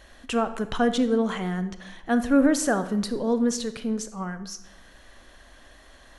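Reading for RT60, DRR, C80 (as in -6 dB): 0.90 s, 11.0 dB, 15.0 dB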